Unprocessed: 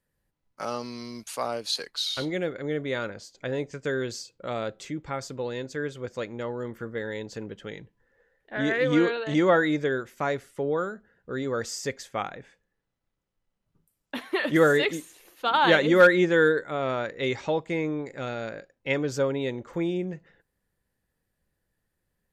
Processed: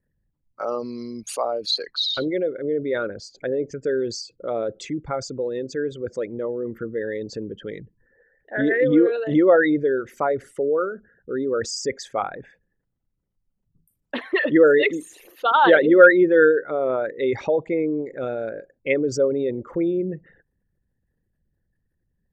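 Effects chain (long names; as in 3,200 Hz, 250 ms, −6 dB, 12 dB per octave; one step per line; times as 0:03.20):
spectral envelope exaggerated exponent 2
0:12.34–0:14.34: highs frequency-modulated by the lows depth 0.1 ms
level +5.5 dB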